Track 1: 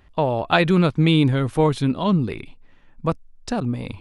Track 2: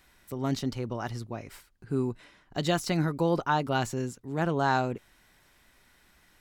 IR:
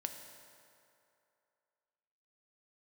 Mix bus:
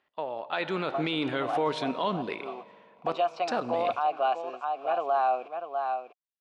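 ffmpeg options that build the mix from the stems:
-filter_complex "[0:a]volume=0.178,asplit=2[s0][s1];[s1]volume=0.562[s2];[1:a]aeval=exprs='val(0)*gte(abs(val(0)),0.0075)':c=same,asplit=3[s3][s4][s5];[s3]bandpass=f=730:t=q:w=8,volume=1[s6];[s4]bandpass=f=1090:t=q:w=8,volume=0.501[s7];[s5]bandpass=f=2440:t=q:w=8,volume=0.355[s8];[s6][s7][s8]amix=inputs=3:normalize=0,adelay=500,volume=1.12,asplit=2[s9][s10];[s10]volume=0.376[s11];[2:a]atrim=start_sample=2205[s12];[s2][s12]afir=irnorm=-1:irlink=0[s13];[s11]aecho=0:1:646:1[s14];[s0][s9][s13][s14]amix=inputs=4:normalize=0,dynaudnorm=f=170:g=9:m=3.76,highpass=450,lowpass=4600,alimiter=limit=0.126:level=0:latency=1:release=26"

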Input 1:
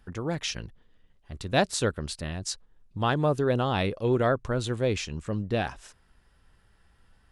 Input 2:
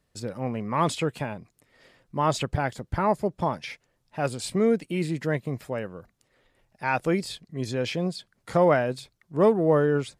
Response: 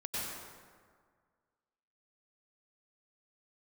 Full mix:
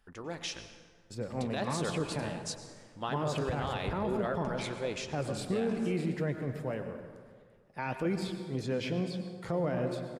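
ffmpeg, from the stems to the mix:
-filter_complex "[0:a]equalizer=f=87:t=o:w=2.8:g=-11.5,acontrast=50,volume=0.355,asplit=2[s0][s1];[s1]volume=0.266[s2];[1:a]highshelf=f=3600:g=-7,acrossover=split=480|3000[s3][s4][s5];[s4]acompressor=threshold=0.0282:ratio=6[s6];[s3][s6][s5]amix=inputs=3:normalize=0,adelay=950,volume=0.841,asplit=2[s7][s8];[s8]volume=0.376[s9];[2:a]atrim=start_sample=2205[s10];[s2][s9]amix=inputs=2:normalize=0[s11];[s11][s10]afir=irnorm=-1:irlink=0[s12];[s0][s7][s12]amix=inputs=3:normalize=0,flanger=delay=1.5:depth=9.7:regen=-75:speed=1.6:shape=sinusoidal,alimiter=limit=0.0708:level=0:latency=1:release=36"

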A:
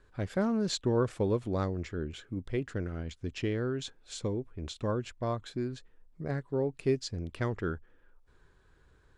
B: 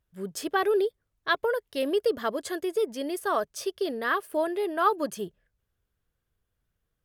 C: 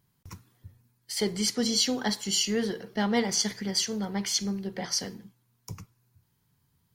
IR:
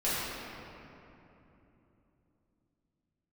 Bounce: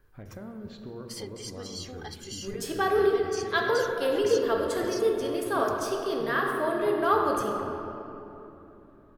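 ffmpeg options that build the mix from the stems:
-filter_complex "[0:a]lowpass=2700,acompressor=threshold=0.00891:ratio=3,volume=0.596,asplit=2[s0][s1];[s1]volume=0.251[s2];[1:a]highpass=200,adelay=2250,volume=0.562,asplit=2[s3][s4];[s4]volume=0.447[s5];[2:a]aecho=1:1:2.5:0.89,acompressor=threshold=0.0224:ratio=4,volume=0.473[s6];[3:a]atrim=start_sample=2205[s7];[s2][s5]amix=inputs=2:normalize=0[s8];[s8][s7]afir=irnorm=-1:irlink=0[s9];[s0][s3][s6][s9]amix=inputs=4:normalize=0"

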